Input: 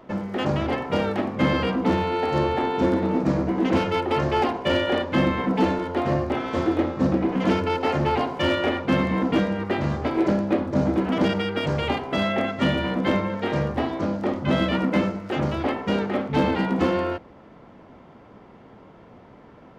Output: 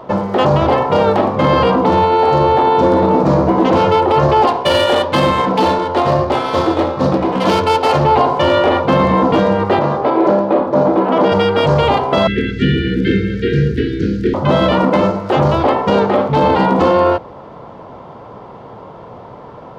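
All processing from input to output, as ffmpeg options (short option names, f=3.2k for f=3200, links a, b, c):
-filter_complex "[0:a]asettb=1/sr,asplit=3[a][b][c];[a]atrim=end=4.474[d];[b]atrim=start=4.47:end=8.05,asetpts=PTS-STARTPTS,afade=t=in:d=0.004:c=qsin,afade=t=out:st=3.576:d=0.004:c=qsin,equalizer=f=5.8k:t=o:w=2.4:g=12.5,flanger=delay=6.5:depth=3.7:regen=-84:speed=1.5:shape=triangular,adynamicsmooth=sensitivity=6:basefreq=2.8k[e];[c]atrim=start=8.046[f];[d][e]acrossfade=d=0.004:c1=hsin:c2=qsin[g];[g][f]acrossfade=d=0.004:c1=qsin:c2=hsin,asettb=1/sr,asplit=3[h][i][j];[h]atrim=end=9.794[k];[i]atrim=start=9.79:end=11.32,asetpts=PTS-STARTPTS,afade=t=in:d=0.004:c=qsin,afade=t=out:st=1.526:d=0.004:c=qsin,highpass=230,aemphasis=mode=reproduction:type=75kf[l];[j]atrim=start=11.316[m];[k][l]acrossfade=d=0.004:c1=hsin:c2=qsin[n];[n][m]acrossfade=d=0.004:c1=qsin:c2=hsin,asettb=1/sr,asplit=3[o][p][q];[o]atrim=end=12.274[r];[p]atrim=start=12.27:end=14.34,asetpts=PTS-STARTPTS,afade=t=in:d=0.004:c=qsin,afade=t=out:st=2.066:d=0.004:c=qsin,aeval=exprs='val(0)+0.0158*(sin(2*PI*60*n/s)+sin(2*PI*2*60*n/s)/2+sin(2*PI*3*60*n/s)/3+sin(2*PI*4*60*n/s)/4+sin(2*PI*5*60*n/s)/5)':c=same,asuperstop=centerf=830:order=20:qfactor=0.81,acrossover=split=3400[s][t];[t]acompressor=threshold=-53dB:ratio=4:attack=1:release=60[u];[s][u]amix=inputs=2:normalize=0[v];[q]atrim=start=14.336[w];[r][v]acrossfade=d=0.004:c1=hsin:c2=qsin[x];[x][w]acrossfade=d=0.004:c1=qsin:c2=hsin,equalizer=f=125:t=o:w=1:g=7,equalizer=f=250:t=o:w=1:g=-3,equalizer=f=500:t=o:w=1:g=7,equalizer=f=1k:t=o:w=1:g=10,equalizer=f=2k:t=o:w=1:g=-4,equalizer=f=4k:t=o:w=1:g=5,alimiter=limit=-11.5dB:level=0:latency=1:release=15,volume=7.5dB"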